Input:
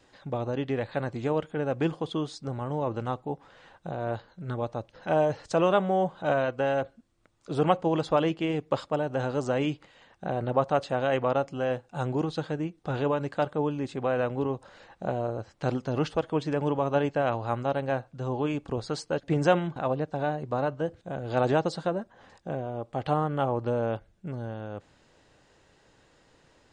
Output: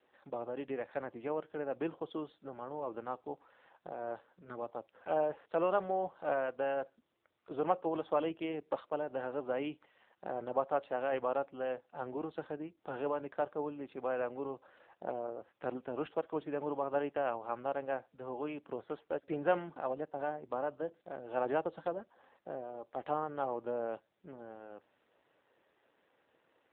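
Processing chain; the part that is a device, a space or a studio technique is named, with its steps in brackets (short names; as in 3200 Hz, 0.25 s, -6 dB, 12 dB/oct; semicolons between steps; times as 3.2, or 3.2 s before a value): telephone (BPF 310–3100 Hz; gain -6.5 dB; AMR-NB 7.4 kbps 8000 Hz)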